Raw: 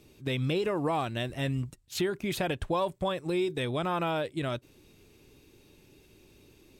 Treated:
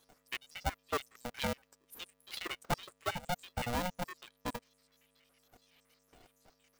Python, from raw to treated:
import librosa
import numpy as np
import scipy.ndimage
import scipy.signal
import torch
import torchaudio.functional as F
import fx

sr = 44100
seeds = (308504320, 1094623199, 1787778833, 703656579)

y = fx.spec_dropout(x, sr, seeds[0], share_pct=81)
y = fx.low_shelf(y, sr, hz=420.0, db=-5.5)
y = fx.dmg_buzz(y, sr, base_hz=100.0, harmonics=3, level_db=-77.0, tilt_db=-4, odd_only=False)
y = y * np.sign(np.sin(2.0 * np.pi * 360.0 * np.arange(len(y)) / sr))
y = y * 10.0 ** (1.0 / 20.0)